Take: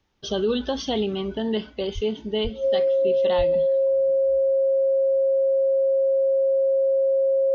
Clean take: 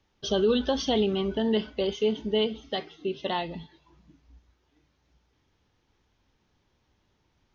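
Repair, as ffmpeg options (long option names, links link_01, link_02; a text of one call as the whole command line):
ffmpeg -i in.wav -filter_complex "[0:a]bandreject=frequency=540:width=30,asplit=3[link_01][link_02][link_03];[link_01]afade=type=out:start_time=1.94:duration=0.02[link_04];[link_02]highpass=frequency=140:width=0.5412,highpass=frequency=140:width=1.3066,afade=type=in:start_time=1.94:duration=0.02,afade=type=out:start_time=2.06:duration=0.02[link_05];[link_03]afade=type=in:start_time=2.06:duration=0.02[link_06];[link_04][link_05][link_06]amix=inputs=3:normalize=0,asplit=3[link_07][link_08][link_09];[link_07]afade=type=out:start_time=2.43:duration=0.02[link_10];[link_08]highpass=frequency=140:width=0.5412,highpass=frequency=140:width=1.3066,afade=type=in:start_time=2.43:duration=0.02,afade=type=out:start_time=2.55:duration=0.02[link_11];[link_09]afade=type=in:start_time=2.55:duration=0.02[link_12];[link_10][link_11][link_12]amix=inputs=3:normalize=0,asplit=3[link_13][link_14][link_15];[link_13]afade=type=out:start_time=3.37:duration=0.02[link_16];[link_14]highpass=frequency=140:width=0.5412,highpass=frequency=140:width=1.3066,afade=type=in:start_time=3.37:duration=0.02,afade=type=out:start_time=3.49:duration=0.02[link_17];[link_15]afade=type=in:start_time=3.49:duration=0.02[link_18];[link_16][link_17][link_18]amix=inputs=3:normalize=0" out.wav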